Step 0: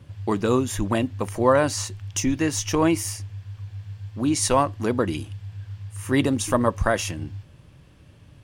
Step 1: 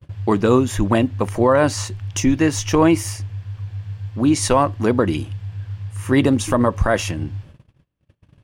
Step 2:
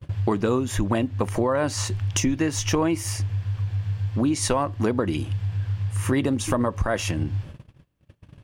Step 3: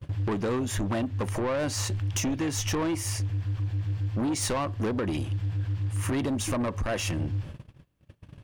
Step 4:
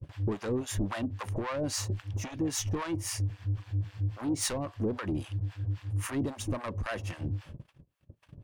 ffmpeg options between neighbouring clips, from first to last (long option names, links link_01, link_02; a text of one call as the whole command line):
ffmpeg -i in.wav -af "highshelf=frequency=4000:gain=-7.5,agate=range=-33dB:threshold=-46dB:ratio=16:detection=peak,alimiter=level_in=10.5dB:limit=-1dB:release=50:level=0:latency=1,volume=-4dB" out.wav
ffmpeg -i in.wav -af "acompressor=threshold=-26dB:ratio=4,volume=4.5dB" out.wav
ffmpeg -i in.wav -af "asoftclip=type=tanh:threshold=-24dB" out.wav
ffmpeg -i in.wav -filter_complex "[0:a]acrossover=split=680[link_01][link_02];[link_01]aeval=exprs='val(0)*(1-1/2+1/2*cos(2*PI*3.7*n/s))':channel_layout=same[link_03];[link_02]aeval=exprs='val(0)*(1-1/2-1/2*cos(2*PI*3.7*n/s))':channel_layout=same[link_04];[link_03][link_04]amix=inputs=2:normalize=0" out.wav